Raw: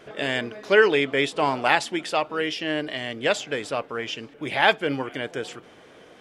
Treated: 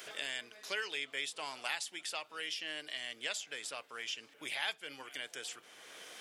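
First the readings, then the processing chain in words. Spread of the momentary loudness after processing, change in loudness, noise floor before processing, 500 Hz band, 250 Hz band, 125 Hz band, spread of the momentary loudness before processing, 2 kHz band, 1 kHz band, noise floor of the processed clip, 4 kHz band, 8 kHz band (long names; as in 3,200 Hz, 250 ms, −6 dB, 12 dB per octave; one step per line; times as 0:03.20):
8 LU, −15.5 dB, −50 dBFS, −25.5 dB, −27.0 dB, −30.5 dB, 12 LU, −15.0 dB, −21.0 dB, −63 dBFS, −9.0 dB, −3.5 dB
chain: first-order pre-emphasis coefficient 0.97
multiband upward and downward compressor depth 70%
level −3 dB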